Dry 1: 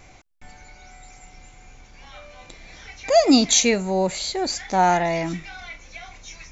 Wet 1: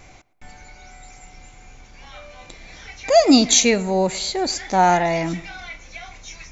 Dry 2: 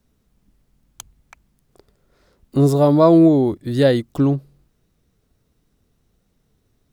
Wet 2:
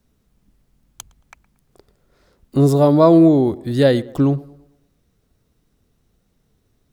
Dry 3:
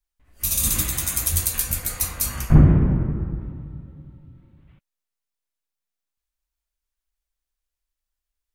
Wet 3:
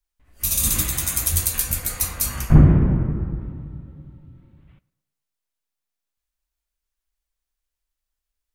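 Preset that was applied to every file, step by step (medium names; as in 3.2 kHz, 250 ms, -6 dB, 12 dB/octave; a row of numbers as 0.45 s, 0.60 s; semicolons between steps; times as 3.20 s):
tape echo 113 ms, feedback 48%, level -19 dB, low-pass 1.9 kHz; peak normalisation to -1.5 dBFS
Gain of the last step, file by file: +2.5 dB, +1.0 dB, +1.0 dB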